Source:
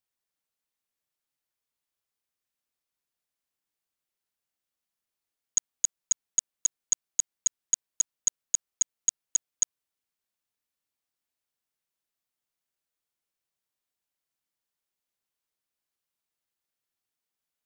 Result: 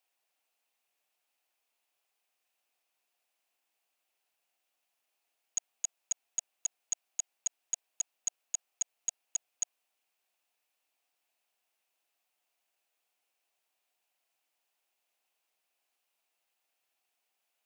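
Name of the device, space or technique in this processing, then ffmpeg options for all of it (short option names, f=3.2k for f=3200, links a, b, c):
laptop speaker: -af "highpass=330,equalizer=f=730:t=o:w=0.58:g=9.5,equalizer=f=2.6k:t=o:w=0.45:g=8,alimiter=level_in=3.5dB:limit=-24dB:level=0:latency=1:release=38,volume=-3.5dB,volume=4.5dB"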